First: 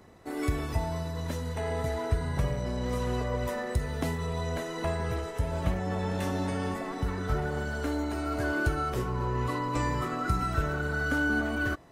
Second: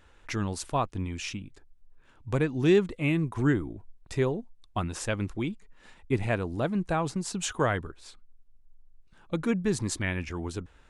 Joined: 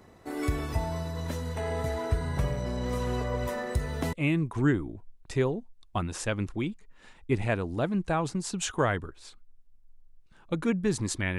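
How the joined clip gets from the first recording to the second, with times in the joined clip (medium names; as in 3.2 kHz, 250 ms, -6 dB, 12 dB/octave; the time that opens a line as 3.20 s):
first
4.13 s: go over to second from 2.94 s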